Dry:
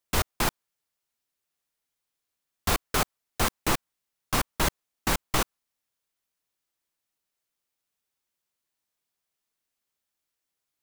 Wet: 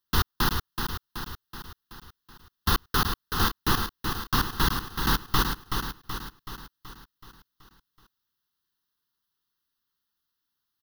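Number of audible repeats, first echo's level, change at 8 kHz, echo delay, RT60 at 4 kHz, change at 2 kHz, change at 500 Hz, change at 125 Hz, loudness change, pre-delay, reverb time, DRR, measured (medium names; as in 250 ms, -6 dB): 6, -6.0 dB, -4.0 dB, 377 ms, no reverb, +1.5 dB, -4.0 dB, +4.5 dB, +0.5 dB, no reverb, no reverb, no reverb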